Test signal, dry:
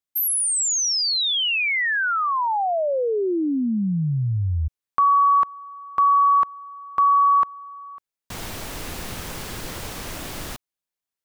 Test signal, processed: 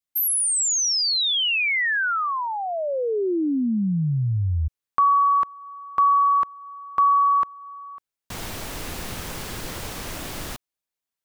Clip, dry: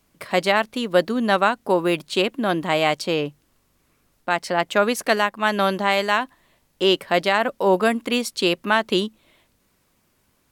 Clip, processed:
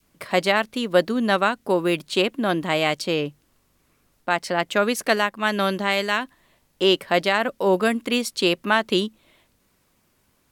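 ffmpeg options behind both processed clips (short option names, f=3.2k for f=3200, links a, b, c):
-af "adynamicequalizer=threshold=0.0224:dfrequency=840:dqfactor=1.3:tfrequency=840:tqfactor=1.3:attack=5:release=100:ratio=0.375:range=3.5:mode=cutabove:tftype=bell"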